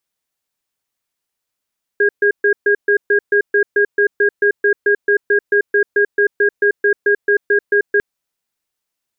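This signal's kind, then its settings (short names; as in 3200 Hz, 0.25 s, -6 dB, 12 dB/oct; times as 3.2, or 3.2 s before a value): cadence 409 Hz, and 1630 Hz, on 0.09 s, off 0.13 s, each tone -12.5 dBFS 6.00 s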